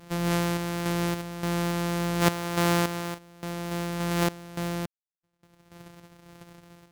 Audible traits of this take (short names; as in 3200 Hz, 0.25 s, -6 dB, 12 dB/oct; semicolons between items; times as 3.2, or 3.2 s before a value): a buzz of ramps at a fixed pitch in blocks of 256 samples; random-step tremolo, depth 100%; MP3